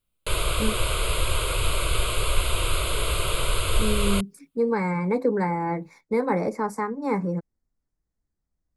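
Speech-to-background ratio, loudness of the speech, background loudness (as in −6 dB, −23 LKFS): −1.0 dB, −27.0 LKFS, −26.0 LKFS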